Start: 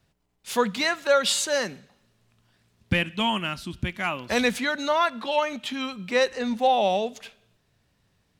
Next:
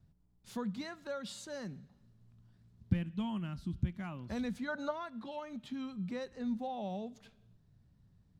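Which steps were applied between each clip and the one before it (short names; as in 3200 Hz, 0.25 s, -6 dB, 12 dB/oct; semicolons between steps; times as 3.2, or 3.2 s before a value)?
compressor 1.5:1, threshold -44 dBFS, peak gain reduction 10.5 dB; EQ curve 170 Hz 0 dB, 480 Hz -15 dB, 820 Hz -15 dB, 1500 Hz -17 dB, 2600 Hz -23 dB, 4100 Hz -18 dB, 10000 Hz -21 dB; spectral gain 4.68–4.9, 410–1700 Hz +10 dB; gain +4.5 dB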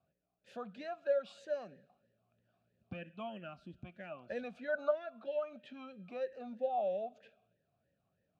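vowel sweep a-e 3.1 Hz; gain +11.5 dB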